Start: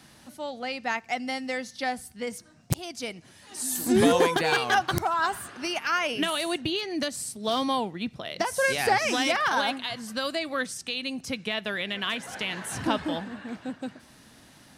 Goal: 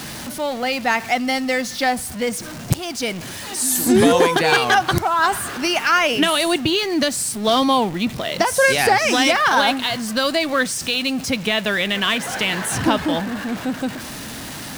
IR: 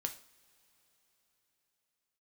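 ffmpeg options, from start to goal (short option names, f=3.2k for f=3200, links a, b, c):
-af "aeval=exprs='val(0)+0.5*0.0141*sgn(val(0))':c=same,alimiter=limit=-14dB:level=0:latency=1:release=366,volume=9dB"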